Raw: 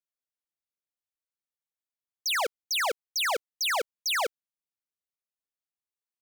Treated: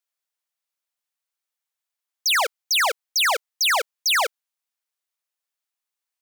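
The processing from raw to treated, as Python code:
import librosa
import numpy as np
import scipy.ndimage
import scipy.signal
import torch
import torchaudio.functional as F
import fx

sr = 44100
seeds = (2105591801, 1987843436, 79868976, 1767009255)

y = scipy.signal.sosfilt(scipy.signal.butter(2, 660.0, 'highpass', fs=sr, output='sos'), x)
y = y * 10.0 ** (8.0 / 20.0)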